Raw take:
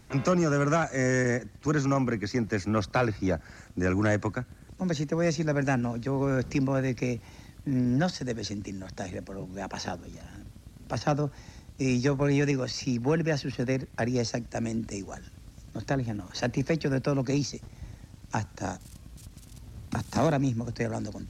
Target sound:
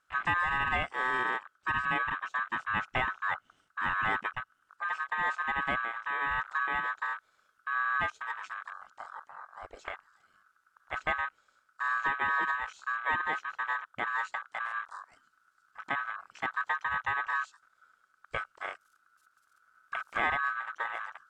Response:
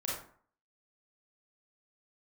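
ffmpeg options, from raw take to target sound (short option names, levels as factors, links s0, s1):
-af "aeval=exprs='val(0)*sin(2*PI*1400*n/s)':c=same,afwtdn=0.0178,volume=0.794"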